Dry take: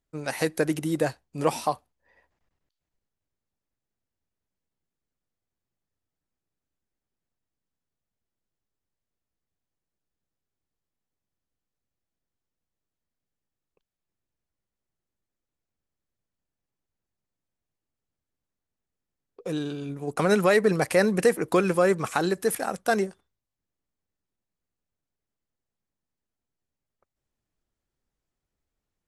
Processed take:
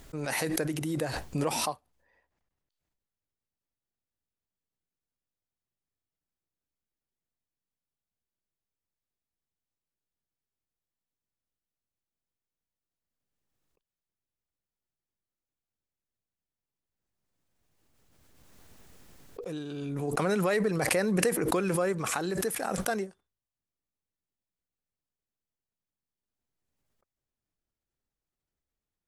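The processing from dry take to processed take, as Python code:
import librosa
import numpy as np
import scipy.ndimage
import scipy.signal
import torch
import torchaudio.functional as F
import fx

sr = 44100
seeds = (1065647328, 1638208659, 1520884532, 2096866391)

y = fx.pre_swell(x, sr, db_per_s=20.0)
y = y * librosa.db_to_amplitude(-8.0)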